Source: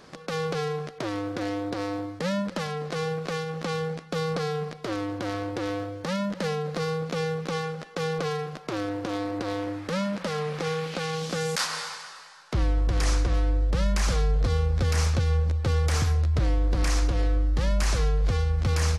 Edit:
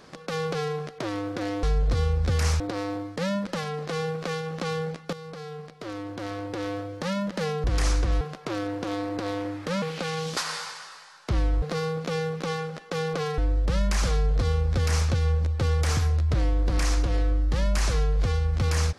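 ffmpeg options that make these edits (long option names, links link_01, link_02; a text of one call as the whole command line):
ffmpeg -i in.wav -filter_complex "[0:a]asplit=10[link_01][link_02][link_03][link_04][link_05][link_06][link_07][link_08][link_09][link_10];[link_01]atrim=end=1.632[link_11];[link_02]atrim=start=14.158:end=15.132[link_12];[link_03]atrim=start=1.628:end=4.16,asetpts=PTS-STARTPTS,afade=type=out:start_time=2.528:duration=0.004:curve=hsin:silence=0.188365[link_13];[link_04]atrim=start=4.16:end=6.672,asetpts=PTS-STARTPTS,afade=type=in:duration=1.82:silence=0.188365[link_14];[link_05]atrim=start=12.858:end=13.432[link_15];[link_06]atrim=start=8.428:end=10.042[link_16];[link_07]atrim=start=10.778:end=11.332[link_17];[link_08]atrim=start=11.608:end=12.862[link_18];[link_09]atrim=start=6.668:end=8.432[link_19];[link_10]atrim=start=13.428[link_20];[link_11][link_12]acrossfade=duration=0.004:curve1=hsin:curve2=hsin[link_21];[link_13][link_14]concat=n=2:v=0:a=1[link_22];[link_21][link_22]acrossfade=duration=0.004:curve1=hsin:curve2=hsin[link_23];[link_23][link_15]acrossfade=duration=0.004:curve1=hsin:curve2=hsin[link_24];[link_24][link_16]acrossfade=duration=0.004:curve1=hsin:curve2=hsin[link_25];[link_25][link_17]acrossfade=duration=0.004:curve1=hsin:curve2=hsin[link_26];[link_26][link_18]acrossfade=duration=0.004:curve1=hsin:curve2=hsin[link_27];[link_27][link_19]acrossfade=duration=0.004:curve1=hsin:curve2=hsin[link_28];[link_28][link_20]acrossfade=duration=0.004:curve1=hsin:curve2=hsin" out.wav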